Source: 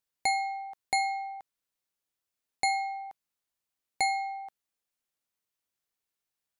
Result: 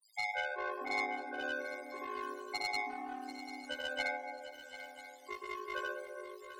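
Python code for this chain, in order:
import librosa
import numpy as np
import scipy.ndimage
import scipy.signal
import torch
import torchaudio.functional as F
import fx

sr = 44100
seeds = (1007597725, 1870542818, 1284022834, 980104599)

p1 = fx.quant_dither(x, sr, seeds[0], bits=6, dither='triangular')
p2 = x + (p1 * 10.0 ** (-11.0 / 20.0))
p3 = fx.spec_topn(p2, sr, count=4)
p4 = fx.bandpass_q(p3, sr, hz=6600.0, q=0.91)
p5 = 10.0 ** (-37.0 / 20.0) * np.tanh(p4 / 10.0 ** (-37.0 / 20.0))
p6 = p5 * np.sin(2.0 * np.pi * 52.0 * np.arange(len(p5)) / sr)
p7 = fx.granulator(p6, sr, seeds[1], grain_ms=100.0, per_s=20.0, spray_ms=100.0, spread_st=0)
p8 = fx.echo_pitch(p7, sr, ms=107, semitones=-6, count=3, db_per_echo=-3.0)
p9 = fx.echo_swing(p8, sr, ms=989, ratio=3, feedback_pct=33, wet_db=-13.0)
y = p9 * 10.0 ** (10.0 / 20.0)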